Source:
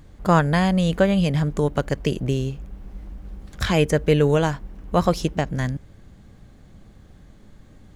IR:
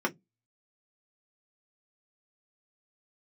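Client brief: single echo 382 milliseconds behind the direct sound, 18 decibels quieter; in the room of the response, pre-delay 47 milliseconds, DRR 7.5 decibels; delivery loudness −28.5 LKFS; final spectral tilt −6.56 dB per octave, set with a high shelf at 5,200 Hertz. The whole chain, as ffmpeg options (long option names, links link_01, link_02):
-filter_complex "[0:a]highshelf=frequency=5200:gain=-7.5,aecho=1:1:382:0.126,asplit=2[link_01][link_02];[1:a]atrim=start_sample=2205,adelay=47[link_03];[link_02][link_03]afir=irnorm=-1:irlink=0,volume=-16.5dB[link_04];[link_01][link_04]amix=inputs=2:normalize=0,volume=-7.5dB"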